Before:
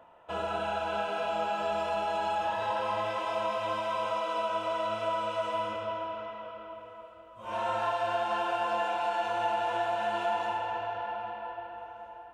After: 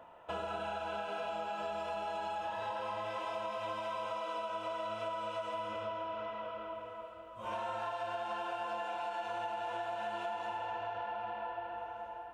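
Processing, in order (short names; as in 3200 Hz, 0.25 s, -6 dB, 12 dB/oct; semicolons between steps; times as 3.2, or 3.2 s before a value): compressor, threshold -37 dBFS, peak gain reduction 11.5 dB; gain +1 dB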